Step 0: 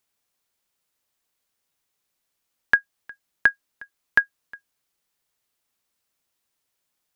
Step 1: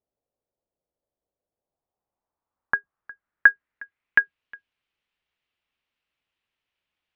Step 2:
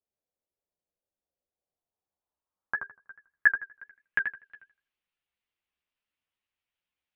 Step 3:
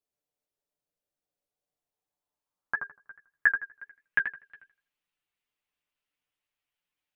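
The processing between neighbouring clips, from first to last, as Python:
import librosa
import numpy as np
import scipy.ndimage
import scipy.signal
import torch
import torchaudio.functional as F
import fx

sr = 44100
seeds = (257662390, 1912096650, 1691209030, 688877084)

y1 = fx.octave_divider(x, sr, octaves=2, level_db=-5.0)
y1 = fx.filter_sweep_lowpass(y1, sr, from_hz=580.0, to_hz=2800.0, start_s=1.48, end_s=4.43, q=2.4)
y1 = y1 * 10.0 ** (-4.0 / 20.0)
y2 = fx.echo_filtered(y1, sr, ms=81, feedback_pct=25, hz=2800.0, wet_db=-6.5)
y2 = fx.chorus_voices(y2, sr, voices=4, hz=1.0, base_ms=13, depth_ms=3.3, mix_pct=40)
y2 = fx.vibrato(y2, sr, rate_hz=7.3, depth_cents=71.0)
y2 = y2 * 10.0 ** (-5.0 / 20.0)
y3 = y2 + 0.45 * np.pad(y2, (int(6.8 * sr / 1000.0), 0))[:len(y2)]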